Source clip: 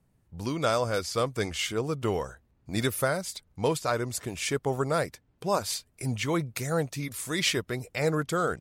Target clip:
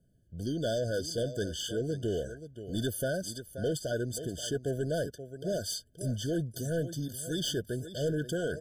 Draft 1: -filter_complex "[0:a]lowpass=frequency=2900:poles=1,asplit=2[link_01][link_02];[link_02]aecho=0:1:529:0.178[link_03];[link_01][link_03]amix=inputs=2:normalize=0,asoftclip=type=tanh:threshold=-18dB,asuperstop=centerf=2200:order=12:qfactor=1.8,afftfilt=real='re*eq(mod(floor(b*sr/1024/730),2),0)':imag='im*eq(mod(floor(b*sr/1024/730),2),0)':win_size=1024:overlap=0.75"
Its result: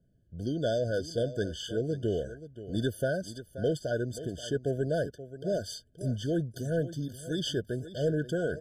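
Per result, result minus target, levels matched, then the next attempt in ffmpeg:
soft clipping: distortion −9 dB; 4,000 Hz band −3.5 dB
-filter_complex "[0:a]lowpass=frequency=2900:poles=1,asplit=2[link_01][link_02];[link_02]aecho=0:1:529:0.178[link_03];[link_01][link_03]amix=inputs=2:normalize=0,asoftclip=type=tanh:threshold=-24.5dB,asuperstop=centerf=2200:order=12:qfactor=1.8,afftfilt=real='re*eq(mod(floor(b*sr/1024/730),2),0)':imag='im*eq(mod(floor(b*sr/1024/730),2),0)':win_size=1024:overlap=0.75"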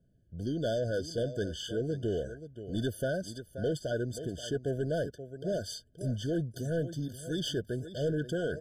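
4,000 Hz band −2.5 dB
-filter_complex "[0:a]asplit=2[link_01][link_02];[link_02]aecho=0:1:529:0.178[link_03];[link_01][link_03]amix=inputs=2:normalize=0,asoftclip=type=tanh:threshold=-24.5dB,asuperstop=centerf=2200:order=12:qfactor=1.8,afftfilt=real='re*eq(mod(floor(b*sr/1024/730),2),0)':imag='im*eq(mod(floor(b*sr/1024/730),2),0)':win_size=1024:overlap=0.75"

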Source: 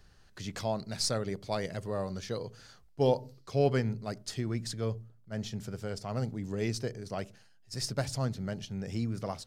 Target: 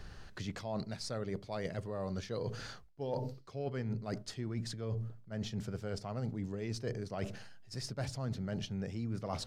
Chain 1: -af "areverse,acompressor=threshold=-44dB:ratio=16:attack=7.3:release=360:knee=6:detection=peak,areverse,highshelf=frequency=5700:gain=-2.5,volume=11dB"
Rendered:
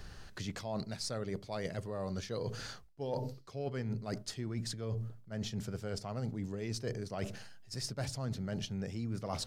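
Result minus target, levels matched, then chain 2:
8,000 Hz band +4.0 dB
-af "areverse,acompressor=threshold=-44dB:ratio=16:attack=7.3:release=360:knee=6:detection=peak,areverse,highshelf=frequency=5700:gain=-10,volume=11dB"

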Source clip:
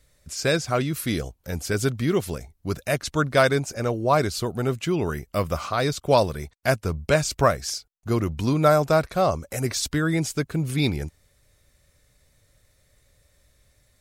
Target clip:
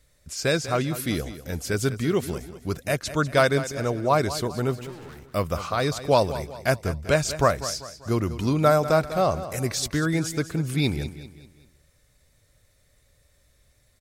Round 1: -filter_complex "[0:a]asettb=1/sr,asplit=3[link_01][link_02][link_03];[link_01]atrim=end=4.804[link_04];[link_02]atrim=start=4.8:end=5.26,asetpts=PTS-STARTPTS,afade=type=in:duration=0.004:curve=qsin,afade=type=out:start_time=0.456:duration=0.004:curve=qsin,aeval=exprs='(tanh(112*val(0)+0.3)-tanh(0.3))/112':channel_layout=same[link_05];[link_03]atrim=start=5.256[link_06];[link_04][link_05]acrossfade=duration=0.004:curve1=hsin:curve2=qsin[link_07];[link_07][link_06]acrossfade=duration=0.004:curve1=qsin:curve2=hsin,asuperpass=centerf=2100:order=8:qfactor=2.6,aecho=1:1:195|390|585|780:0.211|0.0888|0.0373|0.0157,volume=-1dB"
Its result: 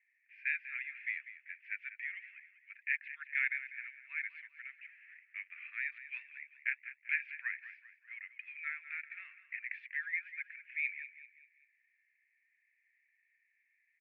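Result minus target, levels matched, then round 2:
2,000 Hz band +10.0 dB
-filter_complex "[0:a]asettb=1/sr,asplit=3[link_01][link_02][link_03];[link_01]atrim=end=4.804[link_04];[link_02]atrim=start=4.8:end=5.26,asetpts=PTS-STARTPTS,afade=type=in:duration=0.004:curve=qsin,afade=type=out:start_time=0.456:duration=0.004:curve=qsin,aeval=exprs='(tanh(112*val(0)+0.3)-tanh(0.3))/112':channel_layout=same[link_05];[link_03]atrim=start=5.256[link_06];[link_04][link_05]acrossfade=duration=0.004:curve1=hsin:curve2=qsin[link_07];[link_07][link_06]acrossfade=duration=0.004:curve1=qsin:curve2=hsin,aecho=1:1:195|390|585|780:0.211|0.0888|0.0373|0.0157,volume=-1dB"

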